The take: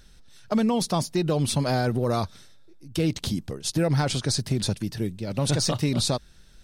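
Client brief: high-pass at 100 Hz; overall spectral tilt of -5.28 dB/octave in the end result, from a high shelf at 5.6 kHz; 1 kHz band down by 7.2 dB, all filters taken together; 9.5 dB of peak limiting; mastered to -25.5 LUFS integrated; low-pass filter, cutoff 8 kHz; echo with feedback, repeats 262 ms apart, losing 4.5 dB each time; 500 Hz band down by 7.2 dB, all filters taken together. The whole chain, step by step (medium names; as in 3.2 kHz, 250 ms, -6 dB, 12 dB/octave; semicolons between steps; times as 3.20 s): high-pass 100 Hz; low-pass 8 kHz; peaking EQ 500 Hz -7.5 dB; peaking EQ 1 kHz -6.5 dB; treble shelf 5.6 kHz -8 dB; peak limiter -25 dBFS; feedback delay 262 ms, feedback 60%, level -4.5 dB; trim +7 dB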